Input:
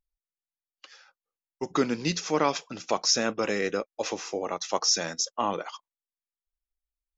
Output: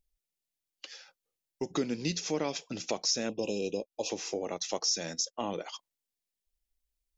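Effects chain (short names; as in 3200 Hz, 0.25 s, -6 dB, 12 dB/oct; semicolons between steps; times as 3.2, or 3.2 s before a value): bell 1200 Hz -12 dB 1.1 oct; compressor 2:1, threshold -43 dBFS, peak gain reduction 13 dB; 3.29–4.1 brick-wall FIR band-stop 1100–2400 Hz; gain +6.5 dB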